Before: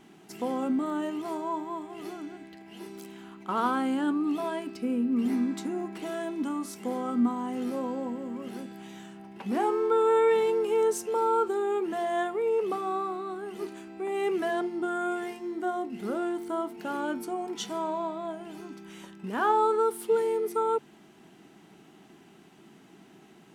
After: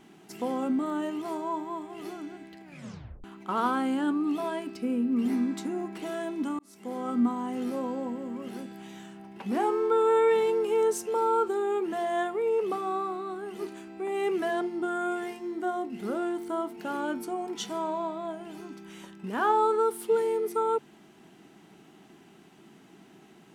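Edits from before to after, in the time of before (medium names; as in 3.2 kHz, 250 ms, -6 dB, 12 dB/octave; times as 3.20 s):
2.64 s: tape stop 0.60 s
6.59–7.10 s: fade in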